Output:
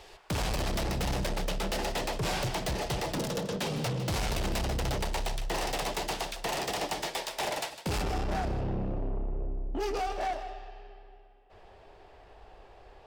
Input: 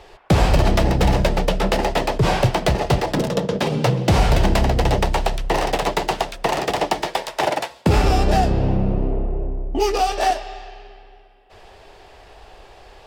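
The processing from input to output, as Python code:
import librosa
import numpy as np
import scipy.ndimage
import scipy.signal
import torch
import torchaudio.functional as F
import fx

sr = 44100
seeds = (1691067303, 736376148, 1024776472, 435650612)

y = fx.high_shelf(x, sr, hz=2800.0, db=fx.steps((0.0, 10.0), (8.01, -3.0), (10.05, -10.5)))
y = 10.0 ** (-20.0 / 20.0) * np.tanh(y / 10.0 ** (-20.0 / 20.0))
y = y + 10.0 ** (-13.0 / 20.0) * np.pad(y, (int(155 * sr / 1000.0), 0))[:len(y)]
y = y * librosa.db_to_amplitude(-8.0)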